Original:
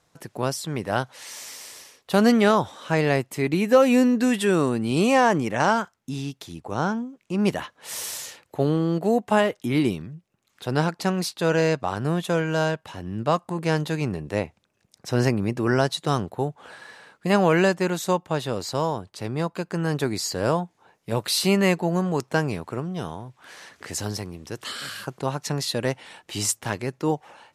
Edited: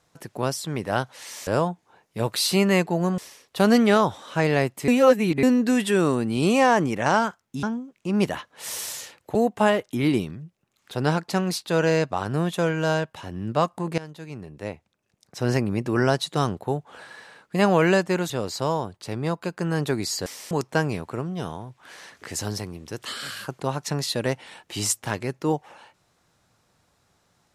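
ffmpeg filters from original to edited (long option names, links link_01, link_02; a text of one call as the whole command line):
ffmpeg -i in.wav -filter_complex "[0:a]asplit=11[link_01][link_02][link_03][link_04][link_05][link_06][link_07][link_08][link_09][link_10][link_11];[link_01]atrim=end=1.472[link_12];[link_02]atrim=start=20.388:end=22.102[link_13];[link_03]atrim=start=1.718:end=3.422[link_14];[link_04]atrim=start=3.418:end=3.972,asetpts=PTS-STARTPTS,areverse[link_15];[link_05]atrim=start=3.968:end=6.172[link_16];[link_06]atrim=start=6.878:end=8.602[link_17];[link_07]atrim=start=9.058:end=13.69,asetpts=PTS-STARTPTS,afade=type=out:start_time=4.628:duration=0.004:curve=hsin:silence=0.11885[link_18];[link_08]atrim=start=13.69:end=18.012,asetpts=PTS-STARTPTS,afade=type=in:duration=1.93:silence=0.11885[link_19];[link_09]atrim=start=18.428:end=20.392[link_20];[link_10]atrim=start=1.468:end=1.722[link_21];[link_11]atrim=start=22.098[link_22];[link_12][link_13]acrossfade=duration=0.004:curve1=hsin:curve2=hsin[link_23];[link_23][link_14]acrossfade=duration=0.004:curve1=hsin:curve2=hsin[link_24];[link_24][link_15]acrossfade=duration=0.004:curve1=hsin:curve2=hsin[link_25];[link_25][link_16]acrossfade=duration=0.004:curve1=hsin:curve2=hsin[link_26];[link_26][link_17]acrossfade=duration=0.004:curve1=hsin:curve2=hsin[link_27];[link_18][link_19]concat=n=2:v=0:a=1[link_28];[link_27][link_28]acrossfade=duration=0.004:curve1=hsin:curve2=hsin[link_29];[link_29][link_20]acrossfade=duration=0.004:curve1=hsin:curve2=hsin[link_30];[link_30][link_21]acrossfade=duration=0.004:curve1=hsin:curve2=hsin[link_31];[link_31][link_22]acrossfade=duration=0.004:curve1=hsin:curve2=hsin" out.wav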